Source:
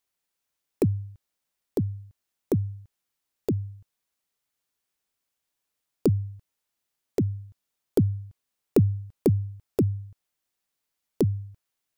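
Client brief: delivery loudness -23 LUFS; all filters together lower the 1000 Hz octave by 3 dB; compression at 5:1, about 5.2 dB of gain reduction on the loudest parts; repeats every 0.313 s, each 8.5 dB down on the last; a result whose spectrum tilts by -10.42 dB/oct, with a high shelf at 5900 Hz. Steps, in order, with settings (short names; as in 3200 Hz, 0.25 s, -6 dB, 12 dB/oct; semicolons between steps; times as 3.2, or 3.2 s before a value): bell 1000 Hz -4.5 dB; high shelf 5900 Hz +3.5 dB; compressor 5:1, threshold -22 dBFS; feedback echo 0.313 s, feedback 38%, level -8.5 dB; gain +9.5 dB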